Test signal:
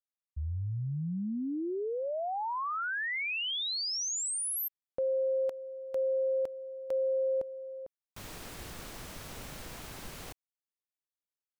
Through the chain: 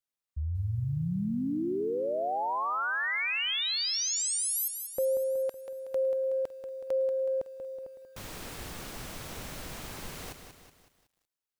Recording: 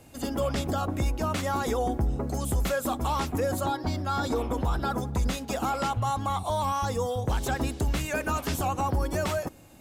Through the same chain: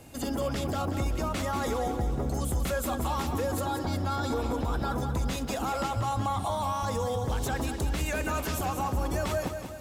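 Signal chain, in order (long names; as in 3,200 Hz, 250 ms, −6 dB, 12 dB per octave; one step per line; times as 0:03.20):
brickwall limiter −25.5 dBFS
feedback echo at a low word length 186 ms, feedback 55%, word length 11 bits, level −8 dB
level +2.5 dB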